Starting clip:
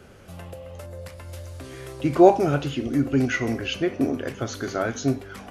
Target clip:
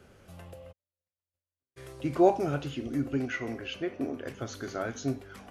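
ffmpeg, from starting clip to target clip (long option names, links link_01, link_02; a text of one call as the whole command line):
ffmpeg -i in.wav -filter_complex "[0:a]asplit=3[link_01][link_02][link_03];[link_01]afade=type=out:start_time=0.71:duration=0.02[link_04];[link_02]agate=range=-54dB:threshold=-30dB:ratio=16:detection=peak,afade=type=in:start_time=0.71:duration=0.02,afade=type=out:start_time=1.76:duration=0.02[link_05];[link_03]afade=type=in:start_time=1.76:duration=0.02[link_06];[link_04][link_05][link_06]amix=inputs=3:normalize=0,asettb=1/sr,asplit=3[link_07][link_08][link_09];[link_07]atrim=end=3.174[link_10];[link_08]atrim=start=3.17:end=4.26,asetpts=PTS-STARTPTS,afade=type=in:duration=0.004:curve=qsin,afade=type=out:start_time=1.086:duration=0.004:curve=qsin,bass=frequency=250:gain=-5,treble=frequency=4000:gain=-6[link_11];[link_09]atrim=start=4.256[link_12];[link_10][link_11]acrossfade=duration=0.004:curve1=hsin:curve2=qsin[link_13];[link_13][link_12]acrossfade=duration=0.004:curve1=qsin:curve2=hsin,volume=-8dB" out.wav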